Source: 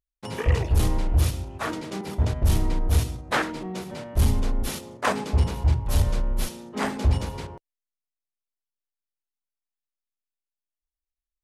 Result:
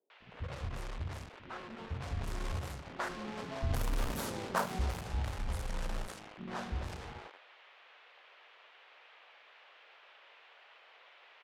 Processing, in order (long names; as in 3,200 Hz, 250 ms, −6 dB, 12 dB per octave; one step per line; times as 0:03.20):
source passing by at 0:04.21, 44 m/s, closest 8.3 metres
high shelf with overshoot 1,900 Hz −8 dB, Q 1.5
mains-hum notches 50/100/150/200/250/300/350 Hz
downward compressor 2.5 to 1, threshold −44 dBFS, peak gain reduction 14 dB
log-companded quantiser 4 bits
low-pass that shuts in the quiet parts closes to 1,900 Hz, open at −37.5 dBFS
noise in a band 440–3,100 Hz −68 dBFS
multiband delay without the direct sound lows, highs 100 ms, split 340 Hz
every ending faded ahead of time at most 150 dB per second
level +8.5 dB